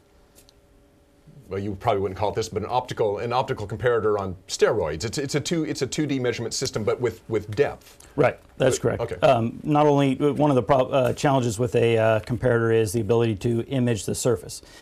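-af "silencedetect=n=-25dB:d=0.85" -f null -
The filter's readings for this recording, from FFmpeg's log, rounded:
silence_start: 0.00
silence_end: 1.53 | silence_duration: 1.53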